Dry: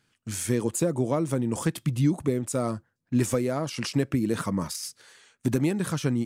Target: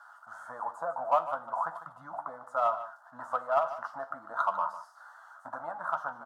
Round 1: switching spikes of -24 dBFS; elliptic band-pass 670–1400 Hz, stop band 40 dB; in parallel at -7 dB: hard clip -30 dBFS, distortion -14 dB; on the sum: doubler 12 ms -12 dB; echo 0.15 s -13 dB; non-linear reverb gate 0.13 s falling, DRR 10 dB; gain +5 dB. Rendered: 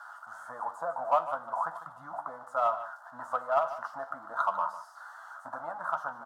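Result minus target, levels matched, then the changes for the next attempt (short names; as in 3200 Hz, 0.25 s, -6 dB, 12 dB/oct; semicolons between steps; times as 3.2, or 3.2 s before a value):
switching spikes: distortion +6 dB
change: switching spikes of -30.5 dBFS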